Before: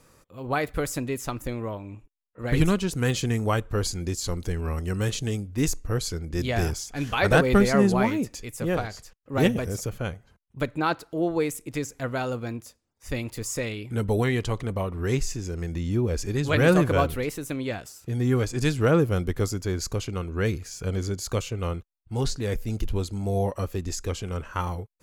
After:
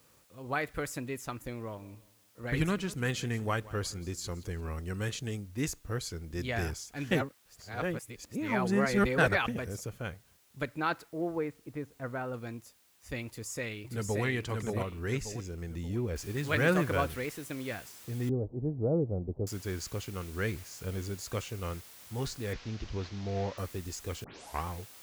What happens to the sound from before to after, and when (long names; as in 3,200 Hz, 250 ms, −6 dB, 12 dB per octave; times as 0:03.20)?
0:01.59–0:04.70: repeating echo 174 ms, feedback 35%, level −19.5 dB
0:07.11–0:09.48: reverse
0:11.08–0:12.34: low-pass filter 1,500 Hz
0:13.26–0:14.24: delay throw 580 ms, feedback 40%, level −3 dB
0:16.16: noise floor change −58 dB −44 dB
0:18.29–0:19.47: Butterworth low-pass 750 Hz
0:22.53–0:23.58: linear delta modulator 32 kbit/s, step −37 dBFS
0:24.24: tape start 0.42 s
whole clip: high-pass filter 44 Hz; dynamic equaliser 1,800 Hz, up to +6 dB, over −42 dBFS, Q 1.2; level −8.5 dB